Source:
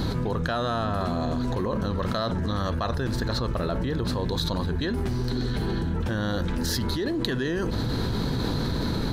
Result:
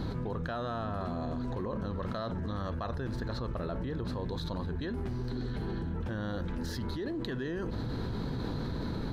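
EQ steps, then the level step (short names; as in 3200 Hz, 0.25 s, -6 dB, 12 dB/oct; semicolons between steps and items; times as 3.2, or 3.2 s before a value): high shelf 3700 Hz -11 dB; -8.0 dB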